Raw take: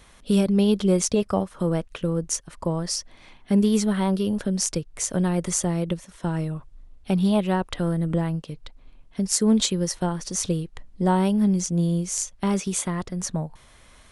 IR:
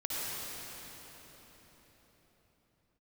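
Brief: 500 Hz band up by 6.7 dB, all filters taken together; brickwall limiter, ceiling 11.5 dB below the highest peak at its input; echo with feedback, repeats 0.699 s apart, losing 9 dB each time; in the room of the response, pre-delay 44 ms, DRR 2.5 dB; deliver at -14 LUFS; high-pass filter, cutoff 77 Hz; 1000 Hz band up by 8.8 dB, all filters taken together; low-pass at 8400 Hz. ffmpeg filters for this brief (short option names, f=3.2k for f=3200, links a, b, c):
-filter_complex "[0:a]highpass=77,lowpass=8.4k,equalizer=f=500:t=o:g=6.5,equalizer=f=1k:t=o:g=8.5,alimiter=limit=-15dB:level=0:latency=1,aecho=1:1:699|1398|2097|2796:0.355|0.124|0.0435|0.0152,asplit=2[a][b];[1:a]atrim=start_sample=2205,adelay=44[c];[b][c]afir=irnorm=-1:irlink=0,volume=-8.5dB[d];[a][d]amix=inputs=2:normalize=0,volume=8.5dB"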